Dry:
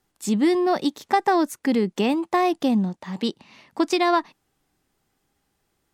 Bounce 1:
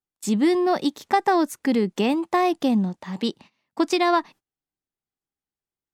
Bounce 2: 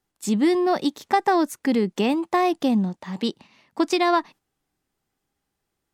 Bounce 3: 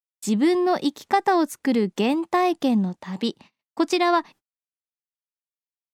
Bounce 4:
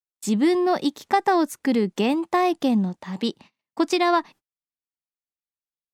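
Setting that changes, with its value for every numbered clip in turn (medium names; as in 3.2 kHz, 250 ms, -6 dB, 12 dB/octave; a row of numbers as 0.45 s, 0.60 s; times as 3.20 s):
gate, range: -24 dB, -7 dB, -56 dB, -39 dB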